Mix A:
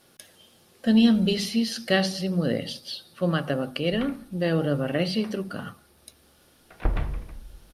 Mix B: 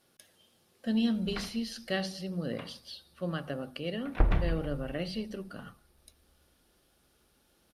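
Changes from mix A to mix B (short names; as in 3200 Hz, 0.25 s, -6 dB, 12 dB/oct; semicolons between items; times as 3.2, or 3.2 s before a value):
speech -10.0 dB; background: entry -2.65 s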